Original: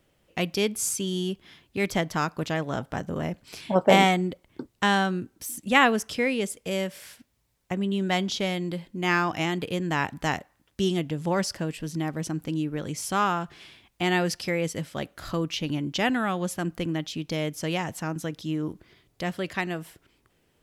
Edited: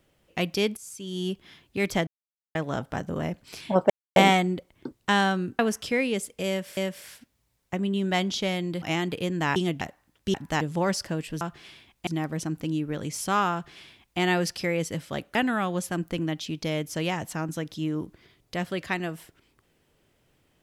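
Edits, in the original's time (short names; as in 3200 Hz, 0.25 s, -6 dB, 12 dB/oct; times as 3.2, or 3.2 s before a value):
0.77–1.27 fade in quadratic, from -17 dB
2.07–2.55 mute
3.9 insert silence 0.26 s
5.33–5.86 cut
6.75–7.04 loop, 2 plays
8.8–9.32 cut
10.06–10.33 swap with 10.86–11.11
13.37–14.03 copy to 11.91
15.19–16.02 cut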